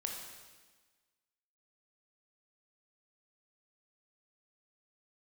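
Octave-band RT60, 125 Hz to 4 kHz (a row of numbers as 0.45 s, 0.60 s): 1.3 s, 1.5 s, 1.4 s, 1.4 s, 1.4 s, 1.4 s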